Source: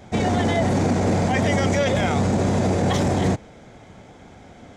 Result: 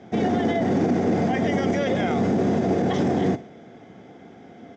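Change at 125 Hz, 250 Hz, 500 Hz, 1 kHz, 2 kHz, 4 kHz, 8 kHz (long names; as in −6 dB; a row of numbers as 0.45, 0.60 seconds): −6.0 dB, +0.5 dB, −1.0 dB, −2.5 dB, −4.5 dB, −6.5 dB, below −10 dB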